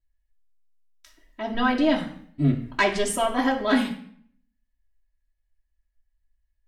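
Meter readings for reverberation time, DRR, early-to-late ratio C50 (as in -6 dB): 0.60 s, -4.5 dB, 10.0 dB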